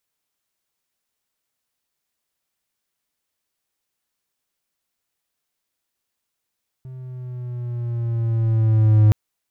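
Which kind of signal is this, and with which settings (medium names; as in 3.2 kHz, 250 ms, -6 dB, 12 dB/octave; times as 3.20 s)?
gliding synth tone triangle, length 2.27 s, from 130 Hz, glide -3.5 st, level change +24.5 dB, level -7 dB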